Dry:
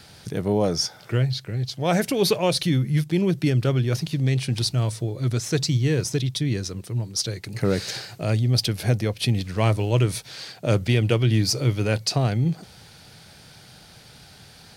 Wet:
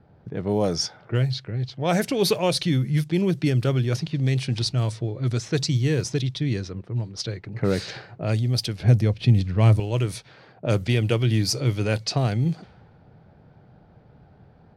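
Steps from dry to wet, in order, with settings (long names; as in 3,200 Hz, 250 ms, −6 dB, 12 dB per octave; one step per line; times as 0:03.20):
low-pass that shuts in the quiet parts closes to 690 Hz, open at −17 dBFS
0:08.80–0:09.80: low-shelf EQ 250 Hz +11.5 dB
automatic gain control gain up to 3 dB
level −3.5 dB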